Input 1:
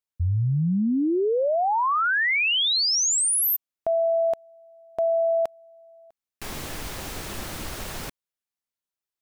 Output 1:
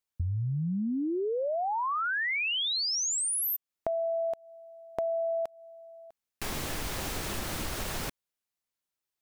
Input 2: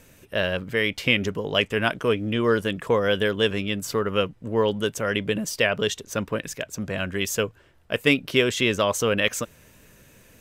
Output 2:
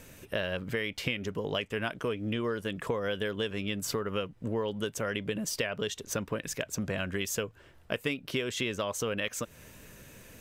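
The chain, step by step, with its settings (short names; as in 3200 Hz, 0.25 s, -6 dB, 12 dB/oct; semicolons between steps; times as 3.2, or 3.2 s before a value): compressor 6:1, threshold -31 dBFS; gain +1.5 dB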